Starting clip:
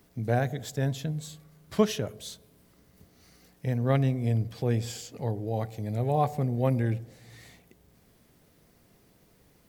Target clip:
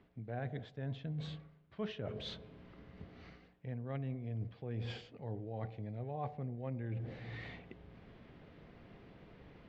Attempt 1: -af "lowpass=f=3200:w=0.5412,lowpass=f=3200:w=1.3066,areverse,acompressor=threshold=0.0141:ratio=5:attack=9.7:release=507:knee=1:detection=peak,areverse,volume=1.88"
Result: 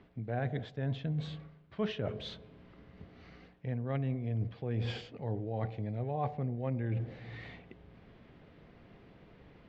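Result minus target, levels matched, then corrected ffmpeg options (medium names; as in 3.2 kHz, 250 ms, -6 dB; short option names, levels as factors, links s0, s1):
compression: peak gain reduction -6.5 dB
-af "lowpass=f=3200:w=0.5412,lowpass=f=3200:w=1.3066,areverse,acompressor=threshold=0.00562:ratio=5:attack=9.7:release=507:knee=1:detection=peak,areverse,volume=1.88"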